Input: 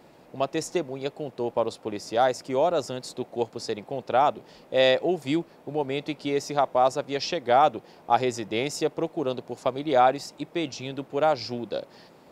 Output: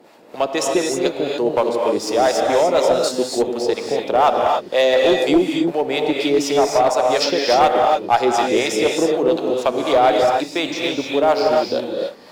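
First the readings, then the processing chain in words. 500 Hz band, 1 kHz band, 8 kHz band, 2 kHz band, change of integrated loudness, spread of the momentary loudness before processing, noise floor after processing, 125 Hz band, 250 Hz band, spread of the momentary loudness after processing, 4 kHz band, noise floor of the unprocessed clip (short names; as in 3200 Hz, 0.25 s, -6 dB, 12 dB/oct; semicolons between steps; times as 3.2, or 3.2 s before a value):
+9.5 dB, +7.0 dB, +11.5 dB, +9.0 dB, +9.0 dB, 12 LU, -36 dBFS, +1.5 dB, +10.0 dB, 6 LU, +10.0 dB, -54 dBFS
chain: HPF 260 Hz 12 dB/oct; sample leveller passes 1; in parallel at 0 dB: compressor, threshold -29 dBFS, peak gain reduction 15 dB; on the sum: harmonic tremolo 4.1 Hz, depth 70%, crossover 580 Hz; non-linear reverb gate 0.32 s rising, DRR 0.5 dB; one-sided clip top -14.5 dBFS; gain +5 dB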